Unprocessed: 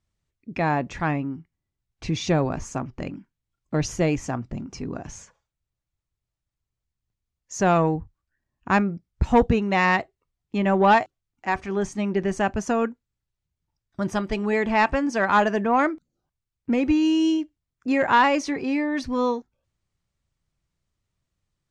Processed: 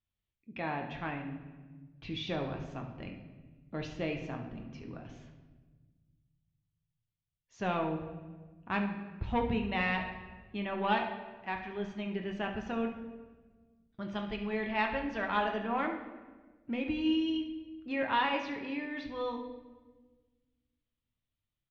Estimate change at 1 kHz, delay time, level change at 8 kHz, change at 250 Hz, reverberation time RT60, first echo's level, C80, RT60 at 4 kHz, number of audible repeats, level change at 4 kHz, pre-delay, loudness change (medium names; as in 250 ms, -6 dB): -12.0 dB, 70 ms, under -25 dB, -11.5 dB, 1.3 s, -12.5 dB, 9.0 dB, 0.95 s, 1, -6.0 dB, 9 ms, -11.5 dB